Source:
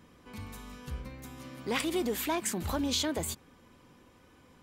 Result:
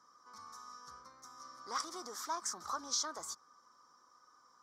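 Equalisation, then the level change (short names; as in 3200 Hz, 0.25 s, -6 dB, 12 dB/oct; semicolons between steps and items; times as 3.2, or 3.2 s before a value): double band-pass 2600 Hz, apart 2.2 oct; +7.0 dB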